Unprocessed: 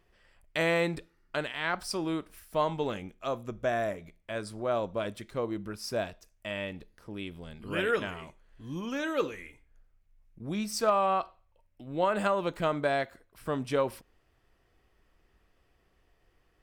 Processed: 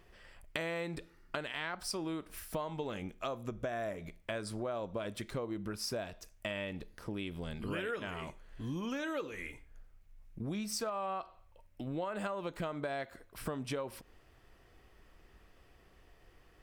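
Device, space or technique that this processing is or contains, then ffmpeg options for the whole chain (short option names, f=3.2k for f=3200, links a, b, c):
serial compression, leveller first: -af "acompressor=threshold=-33dB:ratio=2,acompressor=threshold=-43dB:ratio=4,volume=6.5dB"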